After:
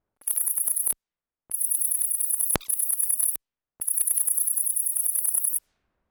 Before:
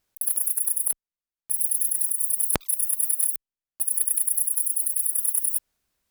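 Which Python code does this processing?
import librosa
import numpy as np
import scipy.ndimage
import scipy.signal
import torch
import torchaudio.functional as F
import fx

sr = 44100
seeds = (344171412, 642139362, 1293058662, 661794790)

y = fx.env_lowpass(x, sr, base_hz=980.0, full_db=-22.5)
y = fx.transient(y, sr, attack_db=0, sustain_db=7)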